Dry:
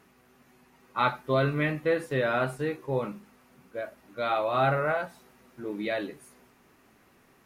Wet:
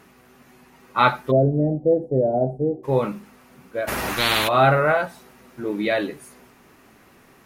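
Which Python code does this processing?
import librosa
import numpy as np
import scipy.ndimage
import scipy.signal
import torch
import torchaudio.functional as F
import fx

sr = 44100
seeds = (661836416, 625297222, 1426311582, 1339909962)

y = fx.ellip_lowpass(x, sr, hz=730.0, order=4, stop_db=40, at=(1.3, 2.83), fade=0.02)
y = fx.spectral_comp(y, sr, ratio=10.0, at=(3.87, 4.47), fade=0.02)
y = y * 10.0 ** (8.5 / 20.0)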